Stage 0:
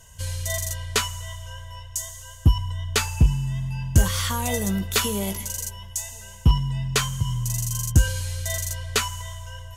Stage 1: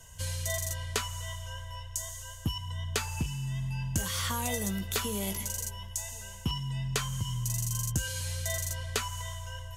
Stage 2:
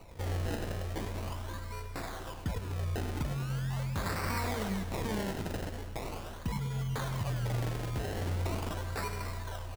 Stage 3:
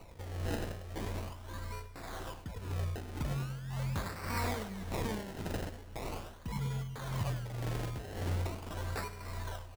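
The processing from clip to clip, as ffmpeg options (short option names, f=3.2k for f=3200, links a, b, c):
-filter_complex "[0:a]acrossover=split=93|1600[a][b][c];[a]acompressor=threshold=-39dB:ratio=4[d];[b]acompressor=threshold=-31dB:ratio=4[e];[c]acompressor=threshold=-30dB:ratio=4[f];[d][e][f]amix=inputs=3:normalize=0,volume=-2dB"
-af "alimiter=level_in=0.5dB:limit=-24dB:level=0:latency=1:release=48,volume=-0.5dB,acrusher=samples=26:mix=1:aa=0.000001:lfo=1:lforange=26:lforate=0.41,aecho=1:1:100|200|300|400|500|600|700:0.282|0.163|0.0948|0.055|0.0319|0.0185|0.0107"
-af "tremolo=f=1.8:d=0.66"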